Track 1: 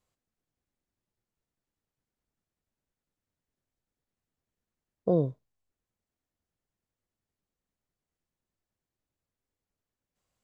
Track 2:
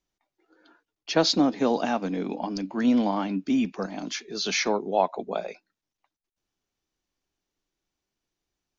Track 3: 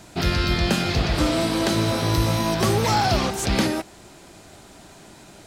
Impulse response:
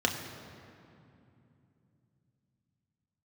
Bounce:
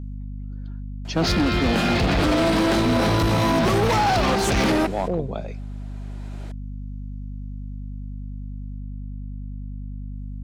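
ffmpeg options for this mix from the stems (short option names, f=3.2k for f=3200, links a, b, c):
-filter_complex "[0:a]volume=-1dB,asplit=2[a][b];[1:a]bass=f=250:g=14,treble=f=4k:g=1,volume=-2.5dB[c];[2:a]bass=f=250:g=-3,treble=f=4k:g=-10,dynaudnorm=f=230:g=9:m=11.5dB,adelay=1050,volume=2dB[d];[b]apad=whole_len=287344[e];[d][e]sidechaincompress=threshold=-44dB:ratio=6:attack=43:release=915[f];[c][f]amix=inputs=2:normalize=0,dynaudnorm=f=370:g=9:m=6dB,alimiter=limit=-9.5dB:level=0:latency=1:release=23,volume=0dB[g];[a][g]amix=inputs=2:normalize=0,asoftclip=type=hard:threshold=-16dB,aeval=exprs='val(0)+0.0282*(sin(2*PI*50*n/s)+sin(2*PI*2*50*n/s)/2+sin(2*PI*3*50*n/s)/3+sin(2*PI*4*50*n/s)/4+sin(2*PI*5*50*n/s)/5)':c=same"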